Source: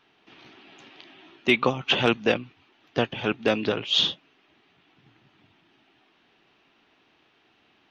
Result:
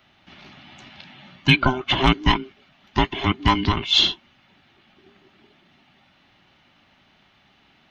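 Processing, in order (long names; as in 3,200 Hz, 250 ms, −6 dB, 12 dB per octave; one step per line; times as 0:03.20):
frequency inversion band by band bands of 500 Hz
0:01.62–0:02.04: high-shelf EQ 2,600 Hz −8 dB
level +5 dB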